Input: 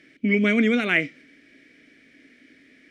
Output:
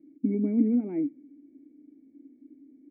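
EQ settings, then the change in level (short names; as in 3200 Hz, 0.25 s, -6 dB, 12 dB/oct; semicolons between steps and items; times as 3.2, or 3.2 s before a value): vocal tract filter u; bell 280 Hz +7.5 dB 0.96 oct; 0.0 dB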